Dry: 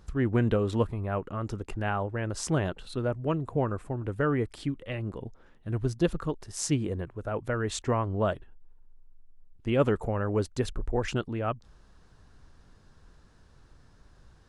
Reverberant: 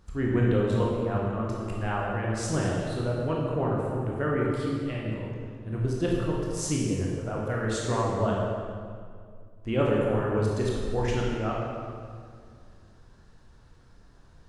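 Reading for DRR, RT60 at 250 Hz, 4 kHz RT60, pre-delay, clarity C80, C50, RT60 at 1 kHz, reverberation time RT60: −3.5 dB, 2.6 s, 1.5 s, 17 ms, 1.0 dB, −1.0 dB, 2.0 s, 2.1 s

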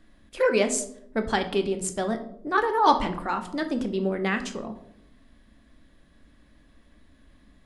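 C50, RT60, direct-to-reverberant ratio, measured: 12.0 dB, 0.75 s, 6.5 dB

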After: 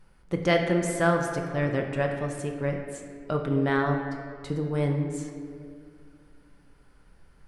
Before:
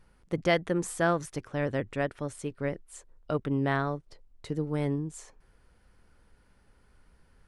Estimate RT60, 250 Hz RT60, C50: 2.2 s, 2.8 s, 5.0 dB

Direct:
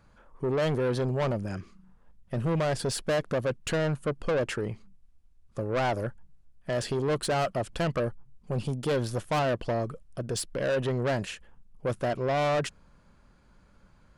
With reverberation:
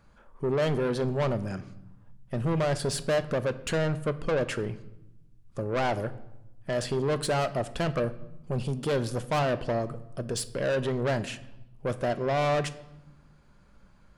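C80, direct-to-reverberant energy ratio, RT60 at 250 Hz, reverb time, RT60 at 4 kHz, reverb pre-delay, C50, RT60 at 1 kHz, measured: 18.5 dB, 11.5 dB, 1.5 s, 0.95 s, 0.70 s, 5 ms, 16.0 dB, 0.90 s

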